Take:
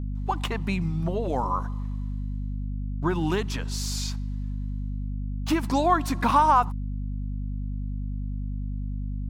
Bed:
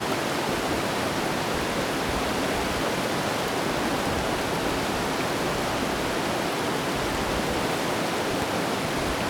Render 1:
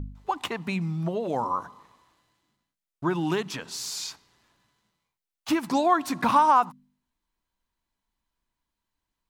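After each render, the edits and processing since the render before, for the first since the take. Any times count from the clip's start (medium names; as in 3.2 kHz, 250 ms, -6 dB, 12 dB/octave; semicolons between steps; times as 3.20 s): de-hum 50 Hz, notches 5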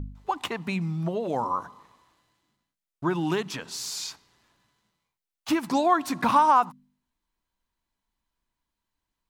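no audible change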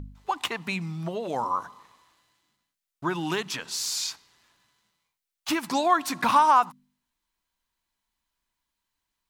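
tilt shelf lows -4.5 dB, about 890 Hz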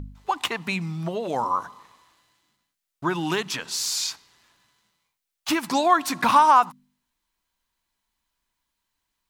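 trim +3 dB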